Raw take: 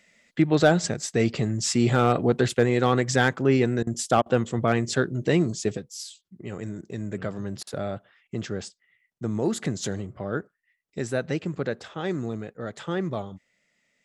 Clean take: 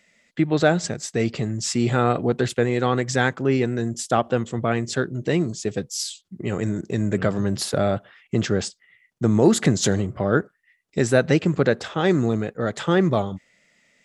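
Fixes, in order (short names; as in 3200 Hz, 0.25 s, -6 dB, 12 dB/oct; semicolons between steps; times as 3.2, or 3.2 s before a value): clip repair -9 dBFS; interpolate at 3.83/4.22/7.63, 39 ms; gain 0 dB, from 5.77 s +9.5 dB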